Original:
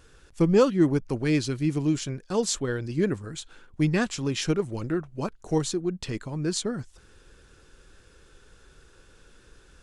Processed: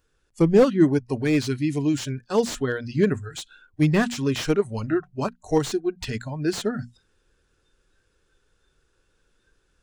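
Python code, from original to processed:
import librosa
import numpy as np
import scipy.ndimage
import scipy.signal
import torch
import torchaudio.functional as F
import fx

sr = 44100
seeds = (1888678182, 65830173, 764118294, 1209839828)

p1 = fx.hum_notches(x, sr, base_hz=60, count=4)
p2 = fx.rider(p1, sr, range_db=4, speed_s=2.0)
p3 = p1 + (p2 * librosa.db_to_amplitude(-3.0))
p4 = fx.noise_reduce_blind(p3, sr, reduce_db=18)
y = fx.slew_limit(p4, sr, full_power_hz=150.0)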